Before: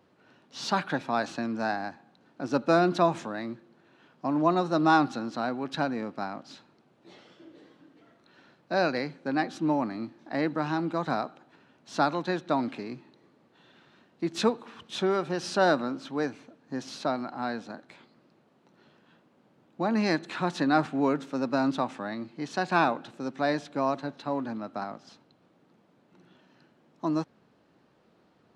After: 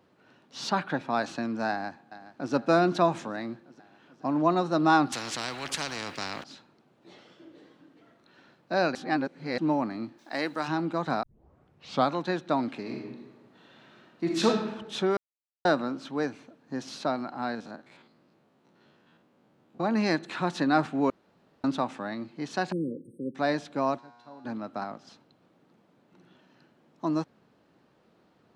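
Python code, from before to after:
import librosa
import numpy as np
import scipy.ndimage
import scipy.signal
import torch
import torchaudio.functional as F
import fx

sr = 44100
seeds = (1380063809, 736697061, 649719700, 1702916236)

y = fx.high_shelf(x, sr, hz=3800.0, db=-7.5, at=(0.69, 1.1))
y = fx.echo_throw(y, sr, start_s=1.69, length_s=0.84, ms=420, feedback_pct=70, wet_db=-15.0)
y = fx.spectral_comp(y, sr, ratio=4.0, at=(5.12, 6.44))
y = fx.riaa(y, sr, side='recording', at=(10.17, 10.67), fade=0.02)
y = fx.reverb_throw(y, sr, start_s=12.81, length_s=1.65, rt60_s=1.1, drr_db=-1.5)
y = fx.spec_steps(y, sr, hold_ms=50, at=(17.53, 19.82), fade=0.02)
y = fx.brickwall_bandstop(y, sr, low_hz=550.0, high_hz=8200.0, at=(22.72, 23.35))
y = fx.comb_fb(y, sr, f0_hz=120.0, decay_s=1.7, harmonics='all', damping=0.0, mix_pct=90, at=(23.97, 24.44), fade=0.02)
y = fx.edit(y, sr, fx.reverse_span(start_s=8.95, length_s=0.63),
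    fx.tape_start(start_s=11.23, length_s=0.88),
    fx.silence(start_s=15.17, length_s=0.48),
    fx.room_tone_fill(start_s=21.1, length_s=0.54), tone=tone)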